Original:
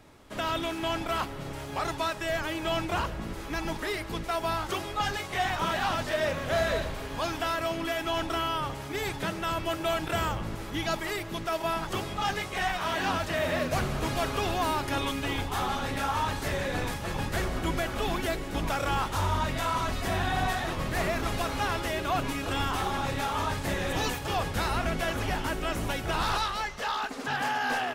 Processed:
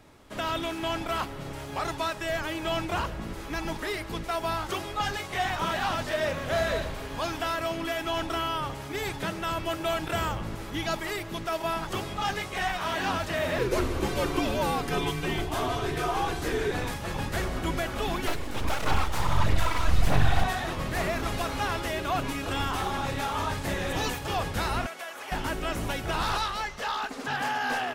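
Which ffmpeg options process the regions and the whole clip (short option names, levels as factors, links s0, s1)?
-filter_complex "[0:a]asettb=1/sr,asplit=3[s0][s1][s2];[s0]atrim=end=13.584[s3];[s1]atrim=start=13.58:end=16.71,asetpts=PTS-STARTPTS,afade=t=in:d=0.004:c=qsin,afade=t=out:st=3.126:d=0.004:c=qsin,equalizer=f=480:t=o:w=0.25:g=14.5,afreqshift=-120[s4];[s2]atrim=start=16.706[s5];[s3][s4]acrossfade=d=0.004:c1=hsin:c2=qsin[s6];[s6][s5]acrossfade=d=0.004:c1=qsin:c2=hsin,asettb=1/sr,asplit=3[s7][s8][s9];[s7]atrim=end=18.274[s10];[s8]atrim=start=18.27:end=20.44,asetpts=PTS-STARTPTS,afade=t=in:d=0.004:c=qsin,afade=t=out:st=2.166:d=0.004:c=qsin,asubboost=boost=11.5:cutoff=69,aphaser=in_gain=1:out_gain=1:delay=4.4:decay=0.43:speed=1.6:type=sinusoidal,aeval=exprs='abs(val(0))':c=same[s11];[s9]atrim=start=20.436[s12];[s10][s11]acrossfade=d=0.004:c1=hsin:c2=qsin[s13];[s13][s12]acrossfade=d=0.004:c1=qsin:c2=hsin,asettb=1/sr,asplit=3[s14][s15][s16];[s14]atrim=end=24.864[s17];[s15]atrim=start=24.86:end=25.32,asetpts=PTS-STARTPTS,afade=t=in:d=0.004:c=qsin,afade=t=out:st=0.456:d=0.004:c=qsin,highpass=670,acrossover=split=2700|6400[s18][s19][s20];[s18]acompressor=threshold=0.0141:ratio=4[s21];[s19]acompressor=threshold=0.00251:ratio=4[s22];[s20]acompressor=threshold=0.00316:ratio=4[s23];[s21][s22][s23]amix=inputs=3:normalize=0,asoftclip=type=hard:threshold=0.0376[s24];[s16]atrim=start=25.316[s25];[s17][s24]acrossfade=d=0.004:c1=hsin:c2=qsin[s26];[s26][s25]acrossfade=d=0.004:c1=qsin:c2=hsin"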